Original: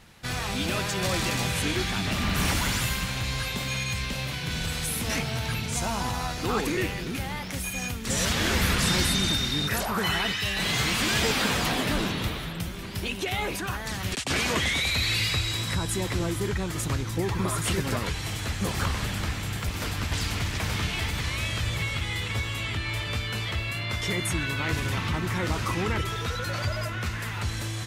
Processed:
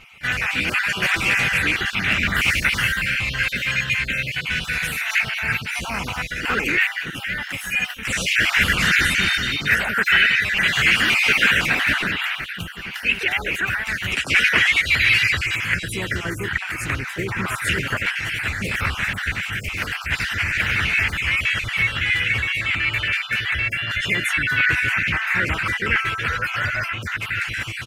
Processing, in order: random holes in the spectrogram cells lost 35%; harmony voices -3 st -13 dB, +3 st -11 dB; high-order bell 2 kHz +15 dB 1.3 oct

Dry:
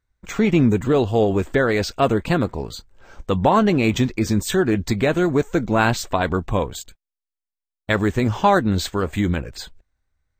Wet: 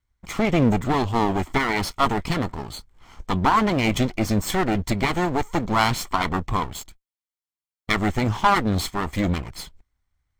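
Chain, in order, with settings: comb filter that takes the minimum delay 0.92 ms

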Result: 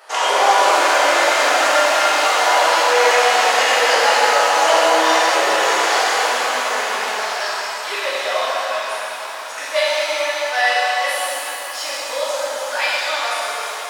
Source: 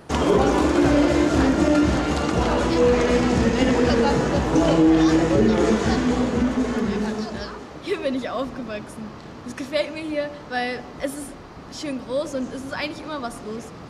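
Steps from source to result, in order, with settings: high-pass 680 Hz 24 dB/octave; pitch-shifted reverb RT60 3 s, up +7 st, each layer -8 dB, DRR -8.5 dB; trim +3 dB

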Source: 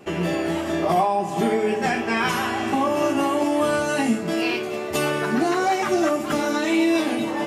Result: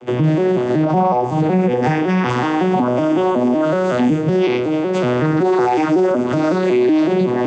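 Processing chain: vocoder on a broken chord major triad, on B2, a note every 186 ms; loudness maximiser +18 dB; trim -7 dB

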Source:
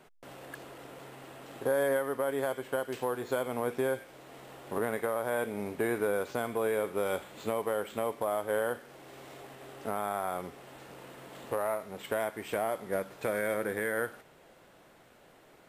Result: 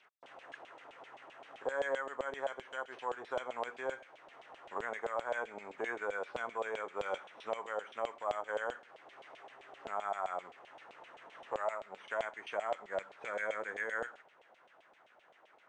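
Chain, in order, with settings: knee-point frequency compression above 3.4 kHz 1.5:1; LFO band-pass saw down 7.7 Hz 630–3200 Hz; trim +2.5 dB

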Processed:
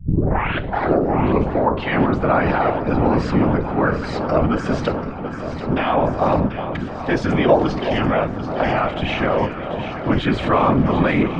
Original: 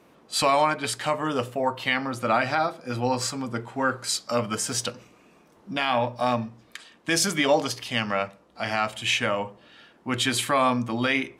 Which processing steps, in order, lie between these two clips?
tape start-up on the opening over 1.67 s; in parallel at -2.5 dB: compressor with a negative ratio -31 dBFS, ratio -0.5; on the sum: whisper effect; tape spacing loss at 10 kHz 45 dB; echo whose repeats swap between lows and highs 369 ms, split 1.3 kHz, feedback 86%, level -9 dB; trim +8.5 dB

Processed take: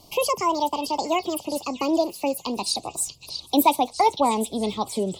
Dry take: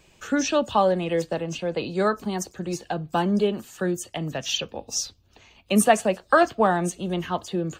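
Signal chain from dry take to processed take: gliding tape speed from 186% -> 114%; in parallel at +0.5 dB: compression, threshold -36 dBFS, peak gain reduction 22 dB; on the sum: Chebyshev band-stop 980–2700 Hz, order 2; repeats whose band climbs or falls 638 ms, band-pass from 3.8 kHz, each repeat 0.7 oct, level -6 dB

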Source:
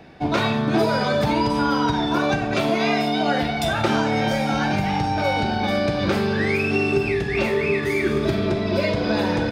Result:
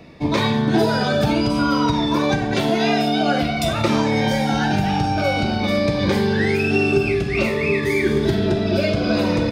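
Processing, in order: Shepard-style phaser falling 0.53 Hz; trim +3.5 dB

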